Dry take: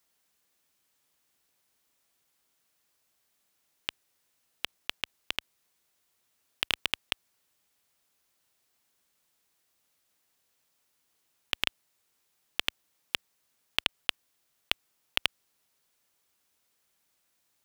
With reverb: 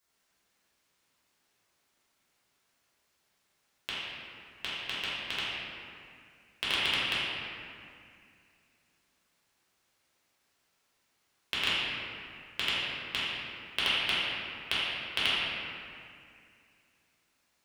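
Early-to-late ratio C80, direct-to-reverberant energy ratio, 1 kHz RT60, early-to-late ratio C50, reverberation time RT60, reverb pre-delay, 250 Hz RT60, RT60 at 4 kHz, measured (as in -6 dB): -1.5 dB, -10.5 dB, 2.2 s, -4.0 dB, 2.3 s, 4 ms, 2.8 s, 1.6 s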